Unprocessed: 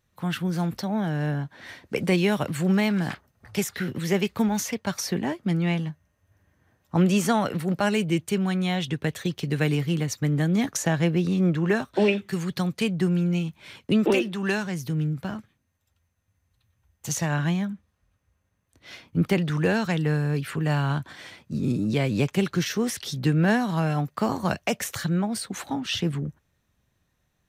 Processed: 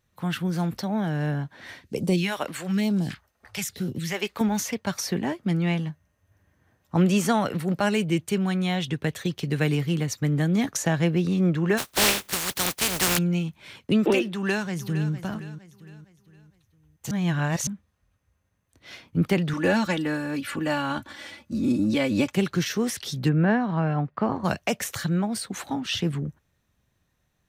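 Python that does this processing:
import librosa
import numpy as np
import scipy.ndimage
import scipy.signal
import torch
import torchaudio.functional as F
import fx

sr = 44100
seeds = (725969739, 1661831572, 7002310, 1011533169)

y = fx.phaser_stages(x, sr, stages=2, low_hz=110.0, high_hz=1900.0, hz=1.1, feedback_pct=25, at=(1.81, 4.41))
y = fx.spec_flatten(y, sr, power=0.25, at=(11.77, 13.17), fade=0.02)
y = fx.echo_throw(y, sr, start_s=14.27, length_s=0.85, ms=460, feedback_pct=40, wet_db=-12.5)
y = fx.comb(y, sr, ms=3.5, depth=0.82, at=(19.53, 22.33))
y = fx.lowpass(y, sr, hz=2000.0, slope=12, at=(23.28, 24.43), fade=0.02)
y = fx.edit(y, sr, fx.reverse_span(start_s=17.11, length_s=0.56), tone=tone)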